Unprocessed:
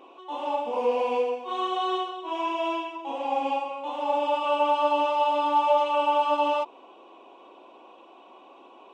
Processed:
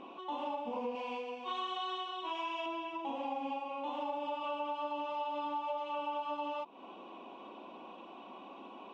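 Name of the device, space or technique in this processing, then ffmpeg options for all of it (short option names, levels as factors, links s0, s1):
jukebox: -filter_complex "[0:a]lowpass=5100,lowshelf=f=270:t=q:w=1.5:g=10,acompressor=threshold=0.0141:ratio=6,asettb=1/sr,asplit=3[s0][s1][s2];[s0]atrim=end=0.954[s3];[s1]atrim=start=0.95:end=2.66,asetpts=PTS-STARTPTS,afade=t=in:d=0.004:c=qsin,afade=t=out:st=1.706:d=0.004:c=qsin,tiltshelf=f=970:g=-6[s4];[s2]atrim=start=2.656[s5];[s3][s4]acrossfade=d=0.004:c1=hsin:c2=qsin[s6];[s6][s5]acrossfade=d=0.004:c1=qsin:c2=hsin,volume=1.12"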